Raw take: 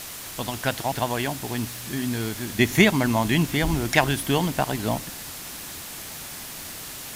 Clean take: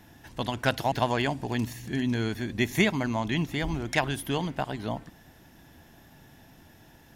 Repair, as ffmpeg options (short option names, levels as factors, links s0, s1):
-af "afwtdn=0.016,asetnsamples=n=441:p=0,asendcmd='2.59 volume volume -6.5dB',volume=1"